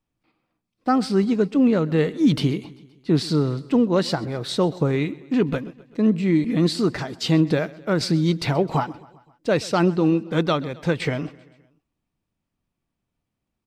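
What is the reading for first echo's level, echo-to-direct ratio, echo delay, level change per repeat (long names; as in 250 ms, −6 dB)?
−21.5 dB, −20.0 dB, 130 ms, −4.5 dB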